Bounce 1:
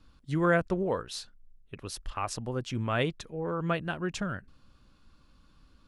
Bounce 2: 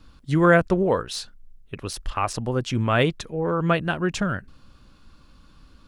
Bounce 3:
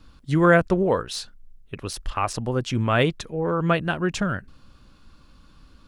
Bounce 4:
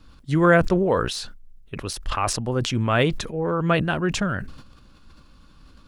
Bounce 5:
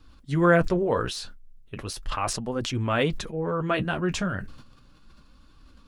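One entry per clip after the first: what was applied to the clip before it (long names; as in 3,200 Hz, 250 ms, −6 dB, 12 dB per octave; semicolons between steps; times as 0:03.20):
de-essing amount 80%; level +8.5 dB
no processing that can be heard
level that may fall only so fast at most 63 dB per second
flanger 0.36 Hz, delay 2.4 ms, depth 9.5 ms, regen −43%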